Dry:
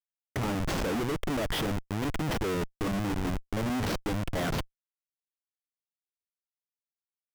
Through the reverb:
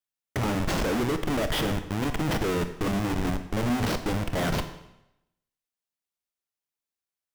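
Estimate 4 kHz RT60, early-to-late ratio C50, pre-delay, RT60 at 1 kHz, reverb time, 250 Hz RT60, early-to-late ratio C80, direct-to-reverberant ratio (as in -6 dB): 0.80 s, 10.5 dB, 25 ms, 0.85 s, 0.85 s, 0.85 s, 12.5 dB, 8.0 dB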